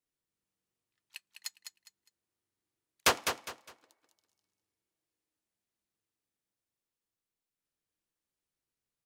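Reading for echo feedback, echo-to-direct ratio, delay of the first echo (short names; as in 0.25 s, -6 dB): 28%, -6.5 dB, 0.204 s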